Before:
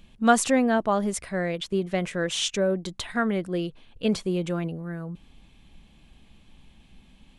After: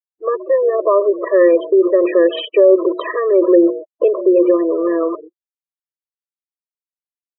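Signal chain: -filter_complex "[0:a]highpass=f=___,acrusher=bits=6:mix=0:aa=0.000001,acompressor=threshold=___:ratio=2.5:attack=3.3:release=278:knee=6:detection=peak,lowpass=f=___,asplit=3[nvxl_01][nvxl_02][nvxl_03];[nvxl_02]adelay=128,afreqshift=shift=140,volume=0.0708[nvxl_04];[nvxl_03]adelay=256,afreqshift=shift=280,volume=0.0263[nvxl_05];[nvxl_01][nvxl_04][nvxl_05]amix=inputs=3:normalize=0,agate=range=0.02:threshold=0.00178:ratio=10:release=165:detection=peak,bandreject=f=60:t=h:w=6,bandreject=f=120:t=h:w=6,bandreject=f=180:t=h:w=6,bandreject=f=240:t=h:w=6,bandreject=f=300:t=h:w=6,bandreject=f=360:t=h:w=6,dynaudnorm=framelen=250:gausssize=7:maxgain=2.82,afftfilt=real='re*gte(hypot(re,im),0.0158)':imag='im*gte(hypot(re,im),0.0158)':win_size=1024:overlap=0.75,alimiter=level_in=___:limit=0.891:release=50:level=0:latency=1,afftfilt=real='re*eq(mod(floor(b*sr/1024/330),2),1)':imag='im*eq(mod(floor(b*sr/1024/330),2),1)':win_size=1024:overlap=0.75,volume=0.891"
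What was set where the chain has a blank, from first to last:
58, 0.0501, 1000, 11.2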